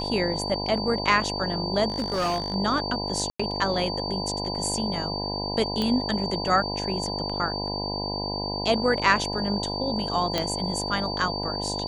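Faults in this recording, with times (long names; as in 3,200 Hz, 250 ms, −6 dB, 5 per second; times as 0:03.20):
mains buzz 50 Hz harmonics 20 −32 dBFS
whistle 4,600 Hz −31 dBFS
0:01.88–0:02.54: clipping −21.5 dBFS
0:03.30–0:03.40: drop-out 95 ms
0:05.82: click −14 dBFS
0:10.38: click −10 dBFS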